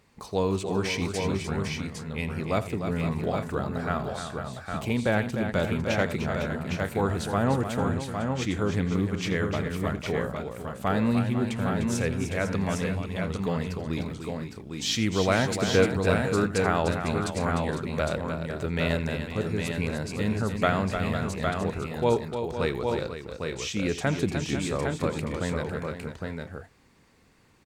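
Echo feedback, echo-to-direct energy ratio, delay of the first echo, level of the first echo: no regular repeats, -2.0 dB, 84 ms, -15.5 dB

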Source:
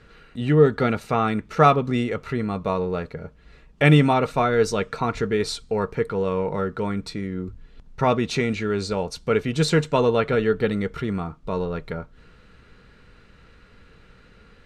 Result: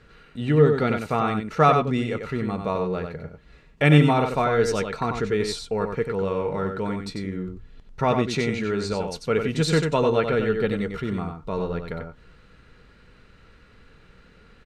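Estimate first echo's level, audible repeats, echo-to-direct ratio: -6.0 dB, 1, -6.0 dB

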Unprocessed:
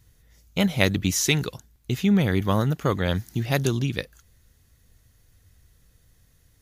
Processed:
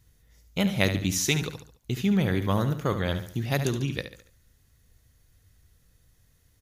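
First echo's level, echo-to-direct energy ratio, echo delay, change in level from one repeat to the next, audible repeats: -10.0 dB, -9.0 dB, 71 ms, -7.5 dB, 4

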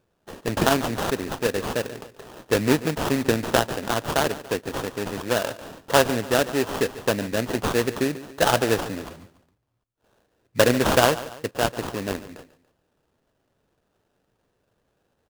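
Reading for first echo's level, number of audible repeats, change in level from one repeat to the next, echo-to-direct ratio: -16.0 dB, 2, -7.0 dB, -15.5 dB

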